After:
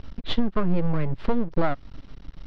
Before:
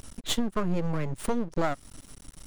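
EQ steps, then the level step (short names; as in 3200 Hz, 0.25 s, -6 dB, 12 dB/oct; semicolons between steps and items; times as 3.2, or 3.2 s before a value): synth low-pass 4900 Hz, resonance Q 2.2; air absorption 360 m; low shelf 85 Hz +6.5 dB; +3.5 dB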